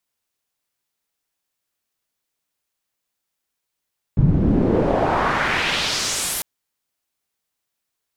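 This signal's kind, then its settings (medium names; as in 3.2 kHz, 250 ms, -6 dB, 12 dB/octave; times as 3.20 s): swept filtered noise white, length 2.25 s lowpass, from 120 Hz, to 13 kHz, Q 1.6, exponential, gain ramp -29 dB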